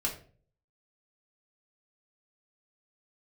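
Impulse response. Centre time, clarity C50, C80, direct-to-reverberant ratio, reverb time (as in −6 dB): 18 ms, 10.0 dB, 14.0 dB, −3.0 dB, 0.45 s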